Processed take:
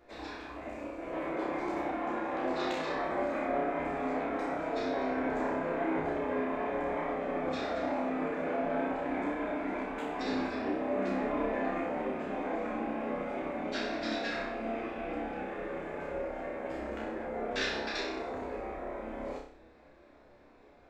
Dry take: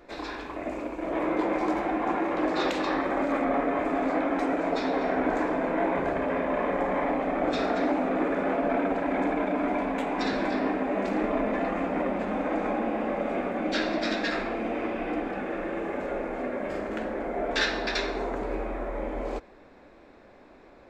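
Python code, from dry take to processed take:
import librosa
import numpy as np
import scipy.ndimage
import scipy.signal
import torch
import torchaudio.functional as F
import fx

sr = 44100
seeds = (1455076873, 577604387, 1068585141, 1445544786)

y = fx.chorus_voices(x, sr, voices=6, hz=0.73, base_ms=13, depth_ms=1.4, mix_pct=35)
y = fx.room_flutter(y, sr, wall_m=5.3, rt60_s=0.53)
y = y * 10.0 ** (-6.0 / 20.0)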